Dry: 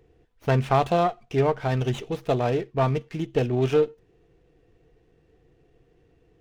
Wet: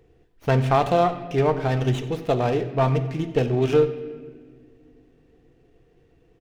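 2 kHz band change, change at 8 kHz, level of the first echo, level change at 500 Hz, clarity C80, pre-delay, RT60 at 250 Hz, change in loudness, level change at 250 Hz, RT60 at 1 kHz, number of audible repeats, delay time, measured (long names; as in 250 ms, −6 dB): +2.0 dB, can't be measured, −19.0 dB, +2.0 dB, 12.5 dB, 4 ms, 3.3 s, +2.0 dB, +2.5 dB, 1.4 s, 1, 92 ms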